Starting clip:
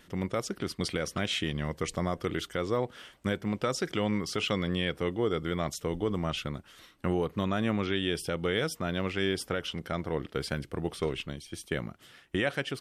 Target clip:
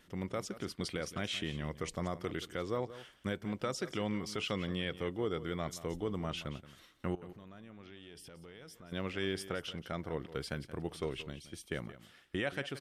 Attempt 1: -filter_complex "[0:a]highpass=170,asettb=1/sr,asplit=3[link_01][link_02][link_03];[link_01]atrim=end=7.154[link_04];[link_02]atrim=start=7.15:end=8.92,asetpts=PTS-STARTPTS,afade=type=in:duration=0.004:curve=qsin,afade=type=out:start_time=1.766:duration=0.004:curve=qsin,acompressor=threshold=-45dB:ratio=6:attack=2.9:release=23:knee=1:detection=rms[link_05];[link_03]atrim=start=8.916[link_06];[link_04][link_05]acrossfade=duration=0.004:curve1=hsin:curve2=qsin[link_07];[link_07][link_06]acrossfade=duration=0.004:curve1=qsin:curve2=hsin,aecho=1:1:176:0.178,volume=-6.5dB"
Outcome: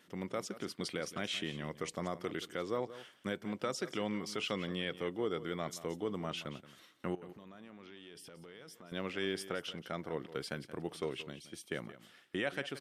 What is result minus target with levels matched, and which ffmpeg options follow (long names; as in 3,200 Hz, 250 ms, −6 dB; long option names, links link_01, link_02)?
125 Hz band −4.0 dB
-filter_complex "[0:a]asettb=1/sr,asplit=3[link_01][link_02][link_03];[link_01]atrim=end=7.154[link_04];[link_02]atrim=start=7.15:end=8.92,asetpts=PTS-STARTPTS,afade=type=in:duration=0.004:curve=qsin,afade=type=out:start_time=1.766:duration=0.004:curve=qsin,acompressor=threshold=-45dB:ratio=6:attack=2.9:release=23:knee=1:detection=rms[link_05];[link_03]atrim=start=8.916[link_06];[link_04][link_05]acrossfade=duration=0.004:curve1=hsin:curve2=qsin[link_07];[link_07][link_06]acrossfade=duration=0.004:curve1=qsin:curve2=hsin,aecho=1:1:176:0.178,volume=-6.5dB"